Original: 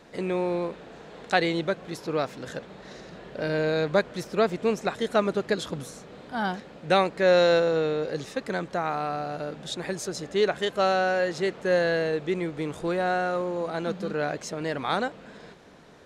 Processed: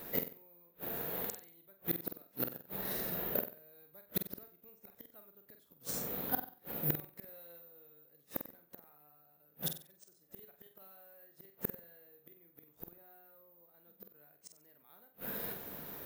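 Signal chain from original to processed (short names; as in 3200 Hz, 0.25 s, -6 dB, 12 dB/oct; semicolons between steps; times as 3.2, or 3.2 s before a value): careless resampling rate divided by 3×, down none, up zero stuff; flipped gate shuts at -16 dBFS, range -40 dB; flutter echo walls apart 8 m, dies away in 0.38 s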